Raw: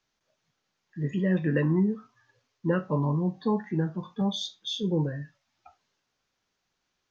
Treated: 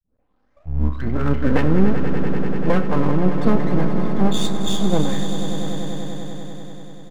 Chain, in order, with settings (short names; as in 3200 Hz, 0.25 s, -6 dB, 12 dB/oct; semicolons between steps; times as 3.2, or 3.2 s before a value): tape start at the beginning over 1.67 s; low shelf 150 Hz +6.5 dB; comb 3.9 ms, depth 61%; half-wave rectifier; swelling echo 97 ms, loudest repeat 5, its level -11.5 dB; gain +8.5 dB